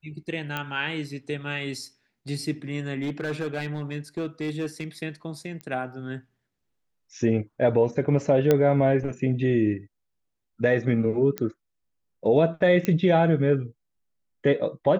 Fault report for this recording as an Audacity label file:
0.570000	0.570000	click −15 dBFS
3.020000	4.840000	clipping −24 dBFS
5.610000	5.610000	click −24 dBFS
8.510000	8.510000	click −8 dBFS
11.380000	11.380000	click −13 dBFS
12.850000	12.850000	click −12 dBFS

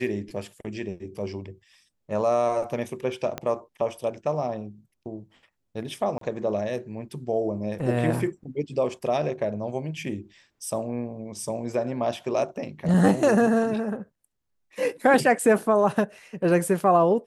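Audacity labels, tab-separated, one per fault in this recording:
3.380000	3.380000	click −15 dBFS
6.180000	6.210000	drop-out 33 ms

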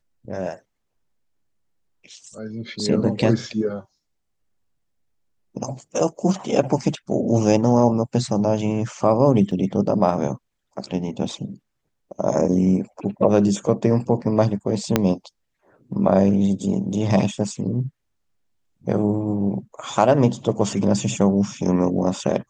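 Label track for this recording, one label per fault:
9.510000	9.510000	drop-out 3.4 ms
14.960000	14.960000	click −2 dBFS

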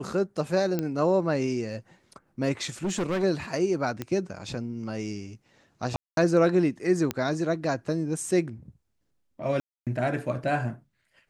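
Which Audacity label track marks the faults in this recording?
0.790000	0.790000	click −15 dBFS
2.840000	3.240000	clipping −24 dBFS
4.020000	4.020000	click −17 dBFS
5.960000	6.170000	drop-out 212 ms
7.110000	7.110000	click −12 dBFS
9.600000	9.870000	drop-out 267 ms

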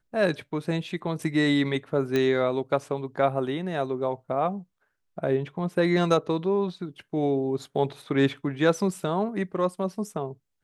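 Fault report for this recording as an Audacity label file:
2.160000	2.160000	click −13 dBFS

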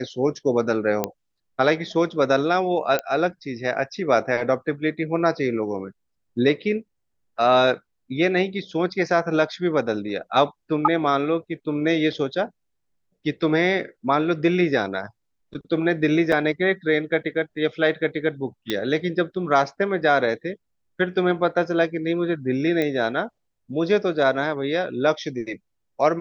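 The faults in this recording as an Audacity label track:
1.040000	1.040000	click −8 dBFS
2.990000	2.990000	click −10 dBFS
16.320000	16.320000	drop-out 3.9 ms
18.700000	18.700000	click −10 dBFS
22.820000	22.820000	click −12 dBFS

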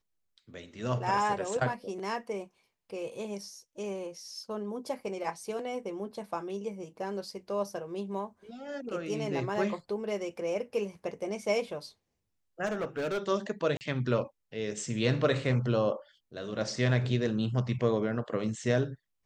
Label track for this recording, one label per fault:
12.650000	13.180000	clipping −28.5 dBFS
13.770000	13.810000	drop-out 39 ms

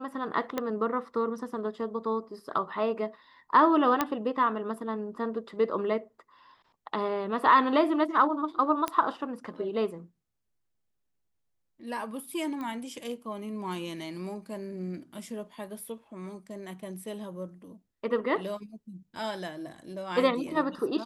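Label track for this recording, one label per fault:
0.580000	0.580000	click −16 dBFS
4.010000	4.010000	click −10 dBFS
8.880000	8.880000	click −14 dBFS
12.610000	12.610000	click −26 dBFS

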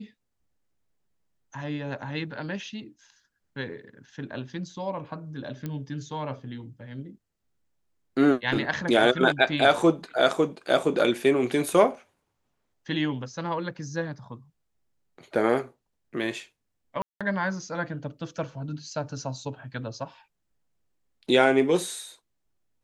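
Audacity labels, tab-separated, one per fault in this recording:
5.660000	5.660000	click −20 dBFS
17.020000	17.210000	drop-out 186 ms

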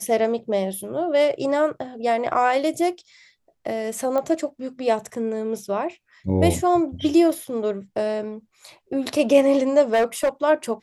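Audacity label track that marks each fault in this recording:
4.180000	4.180000	click −14 dBFS
9.930000	10.290000	clipping −15 dBFS

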